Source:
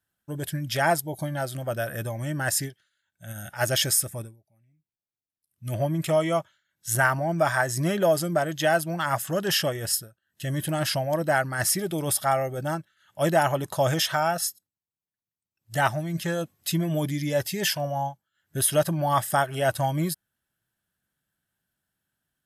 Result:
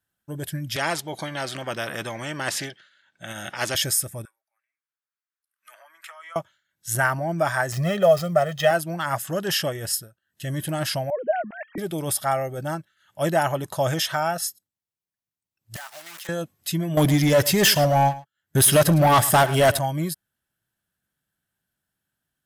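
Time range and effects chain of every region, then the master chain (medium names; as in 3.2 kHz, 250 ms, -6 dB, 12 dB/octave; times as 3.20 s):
0.76–3.75 s: band-pass 190–4100 Hz + spectrum-flattening compressor 2:1
4.25–6.36 s: peaking EQ 1.5 kHz +12.5 dB 1.3 oct + compression 20:1, threshold -29 dBFS + ladder high-pass 870 Hz, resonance 30%
7.72–8.71 s: median filter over 5 samples + comb 1.6 ms, depth 88%
11.10–11.78 s: formants replaced by sine waves + low-pass 1.6 kHz 6 dB/octave + peaking EQ 1.2 kHz -8 dB 1 oct
15.76–16.29 s: block-companded coder 3-bit + high-pass 1 kHz + compression 12:1, threshold -34 dBFS
16.97–19.79 s: waveshaping leveller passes 3 + delay 108 ms -17 dB
whole clip: none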